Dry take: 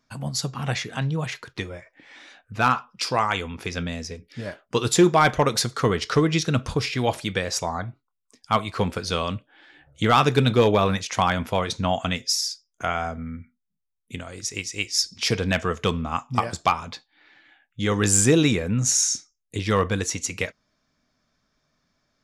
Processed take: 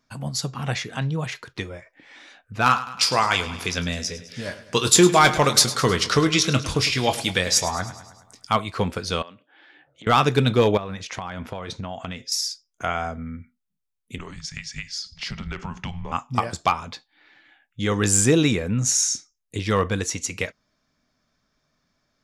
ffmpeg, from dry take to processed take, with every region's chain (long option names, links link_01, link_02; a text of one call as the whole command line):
ffmpeg -i in.wav -filter_complex "[0:a]asettb=1/sr,asplit=3[link_01][link_02][link_03];[link_01]atrim=end=2.664[link_04];[link_02]atrim=start=2.66:end=8.53,asetpts=PTS-STARTPTS,afade=type=in:duration=0.004:curve=qsin,afade=type=out:start_time=5.866:duration=0.004:curve=qsin,highshelf=frequency=2200:gain=9,asplit=2[link_05][link_06];[link_06]adelay=22,volume=-10.5dB[link_07];[link_05][link_07]amix=inputs=2:normalize=0,atrim=end_sample=258867,aecho=1:1:104|208|312|416|520|624:0.188|0.109|0.0634|0.0368|0.0213|0.0124,atrim=end_sample=258867[link_08];[link_03]atrim=start=8.526[link_09];[link_04][link_08]acrossfade=duration=0.004:curve1=hsin:curve2=qsin[link_10];[link_10][link_09]acrossfade=duration=0.004:curve1=qsin:curve2=hsin,asettb=1/sr,asplit=3[link_11][link_12][link_13];[link_11]atrim=end=9.224[link_14];[link_12]atrim=start=9.22:end=10.07,asetpts=PTS-STARTPTS,afade=type=in:duration=0.004:curve=qsin,afade=type=out:start_time=0.846:duration=0.004:curve=qsin,acompressor=threshold=-36dB:ratio=10:attack=3.2:release=140:knee=1:detection=peak,highpass=260,lowpass=4200[link_15];[link_13]atrim=start=10.066[link_16];[link_14][link_15]acrossfade=duration=0.004:curve1=hsin:curve2=qsin[link_17];[link_17][link_16]acrossfade=duration=0.004:curve1=qsin:curve2=hsin,asettb=1/sr,asplit=3[link_18][link_19][link_20];[link_18]atrim=end=10.774[link_21];[link_19]atrim=start=10.77:end=12.32,asetpts=PTS-STARTPTS,afade=type=in:duration=0.004:curve=qsin,afade=type=out:start_time=1.546:duration=0.004:curve=qsin,lowpass=frequency=3500:poles=1,acompressor=threshold=-27dB:ratio=8:attack=3.2:release=140:knee=1:detection=peak[link_22];[link_20]atrim=start=12.316[link_23];[link_21][link_22]acrossfade=duration=0.004:curve1=hsin:curve2=qsin[link_24];[link_24][link_23]acrossfade=duration=0.004:curve1=qsin:curve2=hsin,asettb=1/sr,asplit=3[link_25][link_26][link_27];[link_25]atrim=end=14.184[link_28];[link_26]atrim=start=14.18:end=16.12,asetpts=PTS-STARTPTS,afade=type=in:duration=0.004:curve=qsin,afade=type=out:start_time=1.936:duration=0.004:curve=qsin,lowpass=5900,acompressor=threshold=-27dB:ratio=6:attack=3.2:release=140:knee=1:detection=peak,afreqshift=-260[link_29];[link_27]atrim=start=16.116[link_30];[link_28][link_29]acrossfade=duration=0.004:curve1=hsin:curve2=qsin[link_31];[link_31][link_30]acrossfade=duration=0.004:curve1=qsin:curve2=hsin" out.wav